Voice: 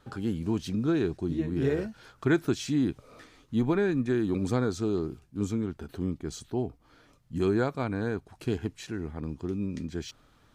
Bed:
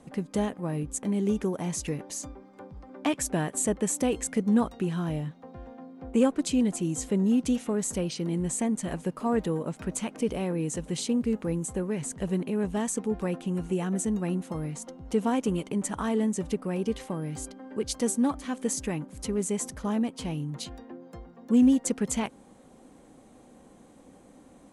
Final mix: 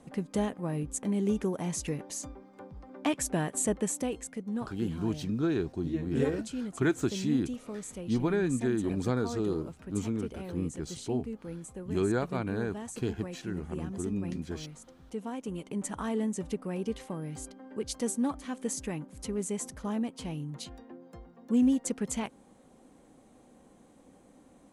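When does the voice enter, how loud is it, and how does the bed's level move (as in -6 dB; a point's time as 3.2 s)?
4.55 s, -2.5 dB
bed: 3.78 s -2 dB
4.39 s -11.5 dB
15.39 s -11.5 dB
15.82 s -4.5 dB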